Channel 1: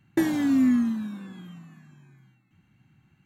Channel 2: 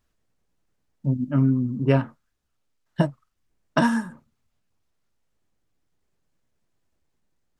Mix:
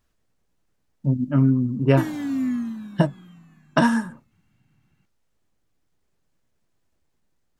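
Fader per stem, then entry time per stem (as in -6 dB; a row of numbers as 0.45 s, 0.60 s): -4.0 dB, +2.0 dB; 1.80 s, 0.00 s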